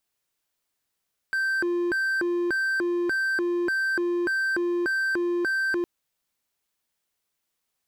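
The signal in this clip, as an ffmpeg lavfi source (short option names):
-f lavfi -i "aevalsrc='0.0944*(1-4*abs(mod((954.5*t+605.5/1.7*(0.5-abs(mod(1.7*t,1)-0.5)))+0.25,1)-0.5))':d=4.51:s=44100"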